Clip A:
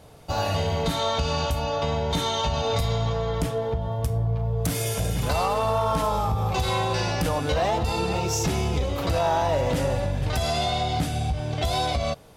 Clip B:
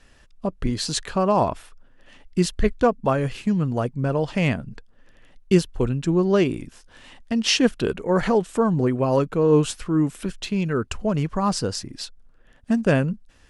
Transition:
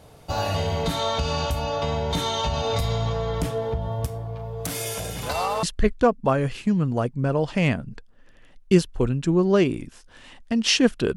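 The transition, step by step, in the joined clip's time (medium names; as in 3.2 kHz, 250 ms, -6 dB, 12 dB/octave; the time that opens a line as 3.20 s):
clip A
4.06–5.63 s: bass shelf 240 Hz -10.5 dB
5.63 s: go over to clip B from 2.43 s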